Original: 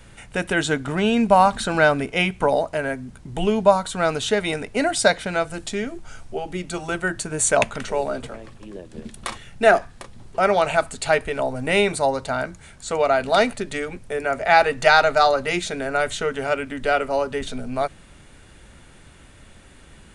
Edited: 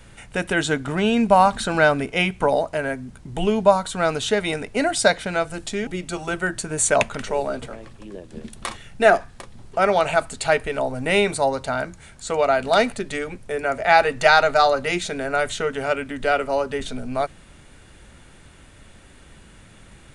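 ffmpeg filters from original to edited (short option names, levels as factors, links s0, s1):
-filter_complex "[0:a]asplit=2[s0][s1];[s0]atrim=end=5.872[s2];[s1]atrim=start=6.478[s3];[s2][s3]acrossfade=d=0.004:c1=hsin:c2=hsin"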